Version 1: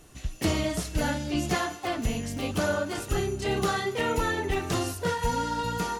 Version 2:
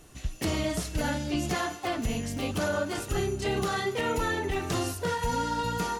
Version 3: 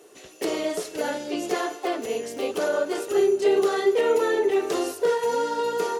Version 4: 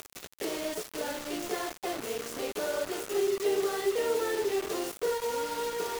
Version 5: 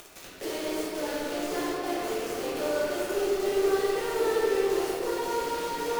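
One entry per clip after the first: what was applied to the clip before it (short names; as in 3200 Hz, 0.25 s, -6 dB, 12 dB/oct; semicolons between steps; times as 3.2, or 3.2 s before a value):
limiter -19 dBFS, peak gain reduction 5 dB
resonant high-pass 420 Hz, resonance Q 4.8
upward compressor, threshold -25 dBFS; bit-crush 5-bit; gain -8 dB
in parallel at -7.5 dB: one-sided clip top -34 dBFS; on the sum: reverb RT60 2.7 s, pre-delay 6 ms, DRR -7 dB; gain -7 dB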